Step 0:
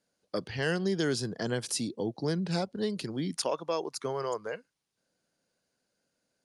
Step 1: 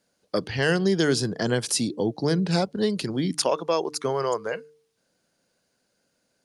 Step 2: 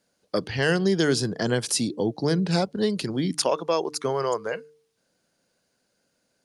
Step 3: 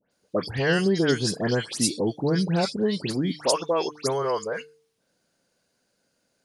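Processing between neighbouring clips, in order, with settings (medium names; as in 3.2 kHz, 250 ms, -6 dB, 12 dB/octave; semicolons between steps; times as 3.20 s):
de-hum 150.3 Hz, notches 3; trim +7.5 dB
no audible change
phase dispersion highs, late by 115 ms, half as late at 2.3 kHz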